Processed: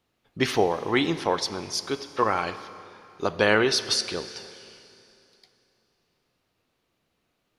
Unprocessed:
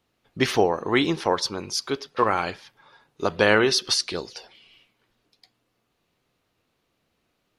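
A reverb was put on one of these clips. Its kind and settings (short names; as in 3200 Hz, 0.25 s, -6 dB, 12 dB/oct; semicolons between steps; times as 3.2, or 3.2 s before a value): Schroeder reverb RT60 2.9 s, combs from 28 ms, DRR 13 dB; gain -2 dB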